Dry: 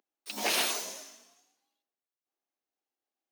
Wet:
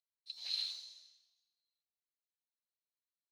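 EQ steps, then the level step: band-pass 4100 Hz, Q 19; +3.5 dB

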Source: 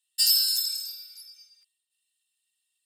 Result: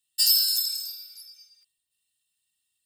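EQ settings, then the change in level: tone controls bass +13 dB, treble +10 dB; bell 8900 Hz -9.5 dB 2.1 oct; 0.0 dB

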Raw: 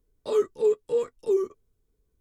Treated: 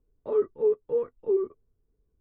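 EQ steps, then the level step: Bessel low-pass 1300 Hz, order 2; air absorption 400 m; 0.0 dB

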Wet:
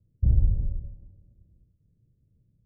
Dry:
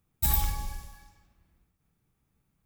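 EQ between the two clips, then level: steep low-pass 610 Hz 72 dB/oct; bell 110 Hz +10 dB 0.64 oct; low shelf 170 Hz +7.5 dB; 0.0 dB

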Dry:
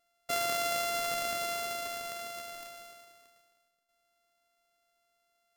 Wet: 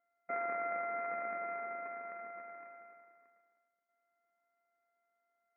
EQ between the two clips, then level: brick-wall FIR band-pass 170–2500 Hz; air absorption 420 m; tilt shelf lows -3.5 dB, about 870 Hz; -2.0 dB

